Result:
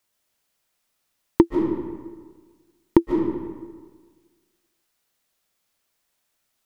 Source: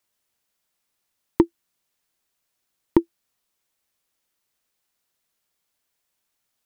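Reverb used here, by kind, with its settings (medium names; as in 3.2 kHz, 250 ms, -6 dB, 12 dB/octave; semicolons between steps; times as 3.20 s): algorithmic reverb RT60 1.5 s, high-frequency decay 0.65×, pre-delay 105 ms, DRR 2.5 dB; trim +2 dB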